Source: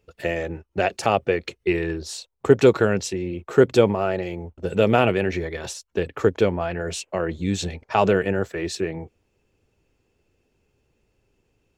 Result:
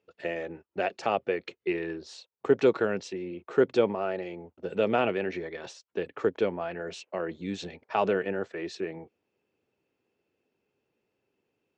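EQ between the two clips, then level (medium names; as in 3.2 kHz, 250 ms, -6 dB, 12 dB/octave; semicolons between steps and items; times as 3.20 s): band-pass 210–6800 Hz; distance through air 89 m; -6.5 dB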